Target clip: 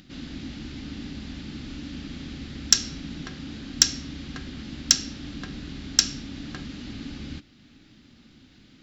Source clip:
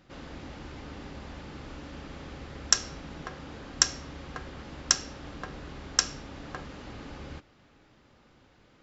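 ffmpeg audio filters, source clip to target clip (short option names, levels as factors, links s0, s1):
-af "equalizer=f=250:t=o:w=1:g=10,equalizer=f=500:t=o:w=1:g=-11,equalizer=f=1000:t=o:w=1:g=-10,equalizer=f=4000:t=o:w=1:g=7,acompressor=mode=upward:threshold=0.00251:ratio=2.5,asoftclip=type=tanh:threshold=0.631,volume=1.5"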